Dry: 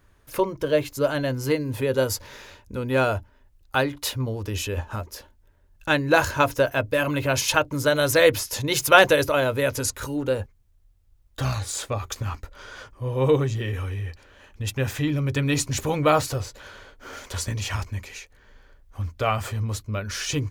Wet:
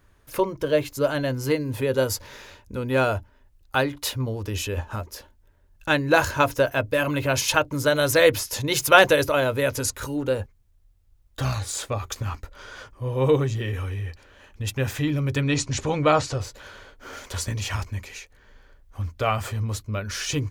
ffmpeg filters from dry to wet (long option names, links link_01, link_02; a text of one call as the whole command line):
ffmpeg -i in.wav -filter_complex "[0:a]asettb=1/sr,asplit=3[link_01][link_02][link_03];[link_01]atrim=end=15.424[link_04];[link_02]atrim=start=15.42:end=16.41,asetpts=PTS-STARTPTS,afade=type=in:duration=0.004:curve=qsin,afade=type=out:start_time=0.986:duration=0.004:curve=qsin,lowpass=frequency=7600:width=0.5412,lowpass=frequency=7600:width=1.3066[link_05];[link_03]atrim=start=16.406[link_06];[link_04][link_05]acrossfade=duration=0.004:curve1=hsin:curve2=qsin[link_07];[link_07][link_06]acrossfade=duration=0.004:curve1=qsin:curve2=hsin" out.wav